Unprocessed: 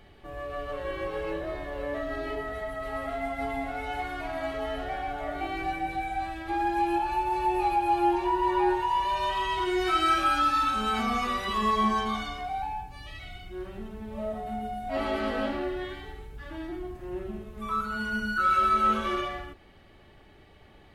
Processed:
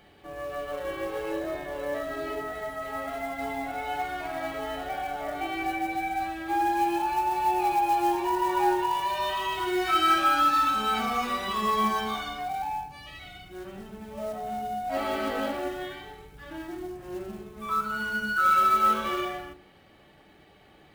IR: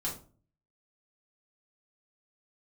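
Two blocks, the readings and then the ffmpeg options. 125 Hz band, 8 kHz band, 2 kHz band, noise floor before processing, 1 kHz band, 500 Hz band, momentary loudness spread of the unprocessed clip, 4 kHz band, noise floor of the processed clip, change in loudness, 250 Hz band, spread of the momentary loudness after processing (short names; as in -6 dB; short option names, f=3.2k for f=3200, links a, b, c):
-4.5 dB, +5.0 dB, +1.5 dB, -54 dBFS, +1.5 dB, 0.0 dB, 16 LU, +1.5 dB, -56 dBFS, +1.0 dB, -1.0 dB, 17 LU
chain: -filter_complex "[0:a]highpass=f=160:p=1,acrusher=bits=5:mode=log:mix=0:aa=0.000001,asplit=2[a][b];[1:a]atrim=start_sample=2205[c];[b][c]afir=irnorm=-1:irlink=0,volume=-8.5dB[d];[a][d]amix=inputs=2:normalize=0,volume=-1.5dB"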